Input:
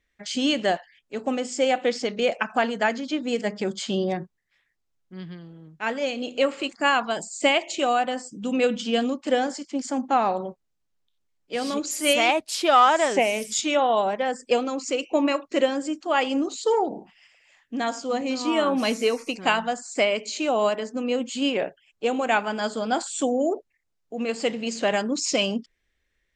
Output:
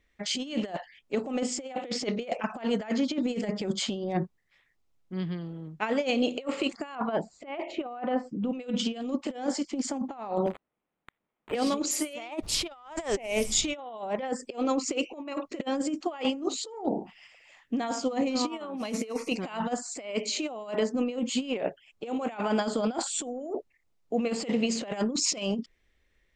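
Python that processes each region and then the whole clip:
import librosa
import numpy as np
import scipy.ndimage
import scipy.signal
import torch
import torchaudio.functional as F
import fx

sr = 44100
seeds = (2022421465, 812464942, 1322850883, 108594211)

y = fx.chain(x, sr, fx.block_float(bits=7),
    fx.lowpass(hz=1800.0, slope=12), at=(6.95, 8.53))
y = fx.chain(y, sr, fx.crossing_spikes(level_db=-32.0),
    fx.highpass(hz=170.0, slope=24),
    fx.resample_linear(factor=8), at=(10.46, 11.55))
y = fx.low_shelf(y, sr, hz=110.0, db=-11.5, at=(12.42, 13.74), fade=0.02)
y = fx.dmg_noise_colour(y, sr, seeds[0], colour='brown', level_db=-45.0, at=(12.42, 13.74), fade=0.02)
y = fx.high_shelf(y, sr, hz=3200.0, db=-6.5)
y = fx.over_compress(y, sr, threshold_db=-29.0, ratio=-0.5)
y = fx.peak_eq(y, sr, hz=1600.0, db=-5.0, octaves=0.31)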